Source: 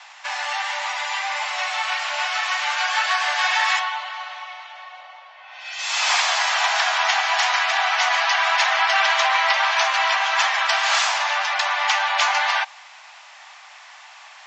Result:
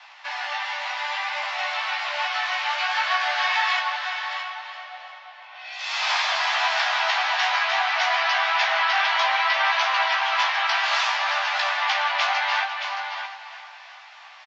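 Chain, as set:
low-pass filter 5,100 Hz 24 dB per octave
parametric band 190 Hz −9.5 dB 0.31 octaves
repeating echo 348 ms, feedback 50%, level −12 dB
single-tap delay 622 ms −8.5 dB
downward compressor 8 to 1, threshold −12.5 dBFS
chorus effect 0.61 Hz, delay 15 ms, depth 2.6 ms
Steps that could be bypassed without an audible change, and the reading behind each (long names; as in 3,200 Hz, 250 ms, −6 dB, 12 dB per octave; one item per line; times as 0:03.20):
parametric band 190 Hz: nothing at its input below 510 Hz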